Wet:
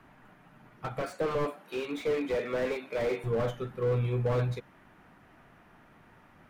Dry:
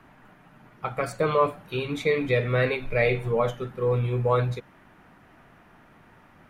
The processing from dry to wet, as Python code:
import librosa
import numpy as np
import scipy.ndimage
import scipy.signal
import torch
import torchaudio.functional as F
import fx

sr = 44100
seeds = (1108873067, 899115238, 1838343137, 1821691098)

y = fx.highpass(x, sr, hz=230.0, slope=24, at=(1.02, 3.24))
y = fx.slew_limit(y, sr, full_power_hz=42.0)
y = y * 10.0 ** (-3.5 / 20.0)